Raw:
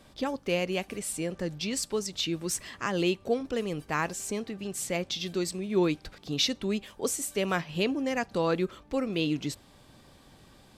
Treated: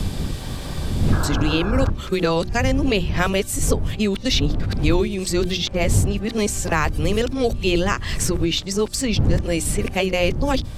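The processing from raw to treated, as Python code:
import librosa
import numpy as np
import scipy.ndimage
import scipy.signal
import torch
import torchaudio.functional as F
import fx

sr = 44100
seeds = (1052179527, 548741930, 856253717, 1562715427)

p1 = x[::-1].copy()
p2 = fx.dmg_wind(p1, sr, seeds[0], corner_hz=84.0, level_db=-30.0)
p3 = fx.hum_notches(p2, sr, base_hz=60, count=6)
p4 = fx.rider(p3, sr, range_db=10, speed_s=0.5)
p5 = p3 + F.gain(torch.from_numpy(p4), 2.0).numpy()
p6 = fx.spec_paint(p5, sr, seeds[1], shape='noise', start_s=1.12, length_s=0.78, low_hz=280.0, high_hz=1700.0, level_db=-33.0)
p7 = fx.band_squash(p6, sr, depth_pct=70)
y = F.gain(torch.from_numpy(p7), 1.0).numpy()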